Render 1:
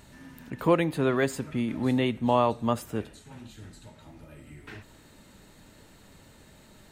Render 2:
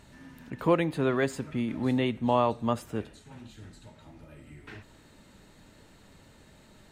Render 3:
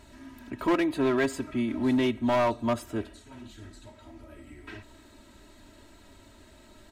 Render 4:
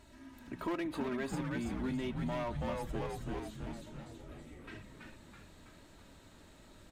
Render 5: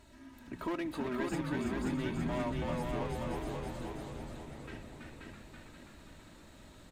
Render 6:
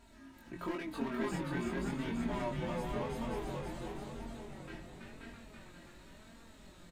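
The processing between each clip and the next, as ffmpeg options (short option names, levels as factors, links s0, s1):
-af "highshelf=f=11000:g=-10,volume=0.841"
-af "aecho=1:1:3.1:0.86,asoftclip=type=hard:threshold=0.106"
-filter_complex "[0:a]asplit=2[s0][s1];[s1]asplit=8[s2][s3][s4][s5][s6][s7][s8][s9];[s2]adelay=328,afreqshift=-94,volume=0.668[s10];[s3]adelay=656,afreqshift=-188,volume=0.376[s11];[s4]adelay=984,afreqshift=-282,volume=0.209[s12];[s5]adelay=1312,afreqshift=-376,volume=0.117[s13];[s6]adelay=1640,afreqshift=-470,volume=0.0661[s14];[s7]adelay=1968,afreqshift=-564,volume=0.0367[s15];[s8]adelay=2296,afreqshift=-658,volume=0.0207[s16];[s9]adelay=2624,afreqshift=-752,volume=0.0115[s17];[s10][s11][s12][s13][s14][s15][s16][s17]amix=inputs=8:normalize=0[s18];[s0][s18]amix=inputs=2:normalize=0,acompressor=threshold=0.0447:ratio=6,volume=0.473"
-af "aecho=1:1:532|1064|1596|2128|2660:0.708|0.297|0.125|0.0525|0.022"
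-filter_complex "[0:a]flanger=delay=4.3:depth=1.5:regen=39:speed=0.94:shape=sinusoidal,asplit=2[s0][s1];[s1]adelay=22,volume=0.75[s2];[s0][s2]amix=inputs=2:normalize=0,volume=1.12"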